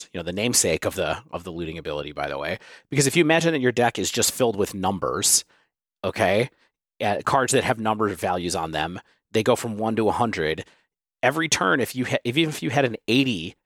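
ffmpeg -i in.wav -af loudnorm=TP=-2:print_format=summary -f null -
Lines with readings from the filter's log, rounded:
Input Integrated:    -22.8 LUFS
Input True Peak:      -5.4 dBTP
Input LRA:             2.7 LU
Input Threshold:     -33.2 LUFS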